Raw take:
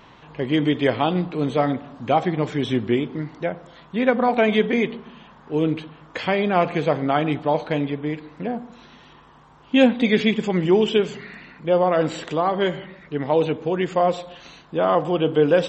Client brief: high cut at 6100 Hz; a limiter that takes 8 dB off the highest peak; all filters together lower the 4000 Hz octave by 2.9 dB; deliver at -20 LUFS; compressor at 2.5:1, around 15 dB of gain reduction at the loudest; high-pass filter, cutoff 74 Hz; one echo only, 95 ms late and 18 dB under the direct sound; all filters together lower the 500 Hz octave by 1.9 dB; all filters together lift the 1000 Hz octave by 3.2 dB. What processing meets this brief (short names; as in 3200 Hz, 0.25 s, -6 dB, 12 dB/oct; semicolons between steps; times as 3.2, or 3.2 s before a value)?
HPF 74 Hz; LPF 6100 Hz; bell 500 Hz -4 dB; bell 1000 Hz +6.5 dB; bell 4000 Hz -4 dB; compressor 2.5:1, threshold -36 dBFS; limiter -25.5 dBFS; echo 95 ms -18 dB; gain +17.5 dB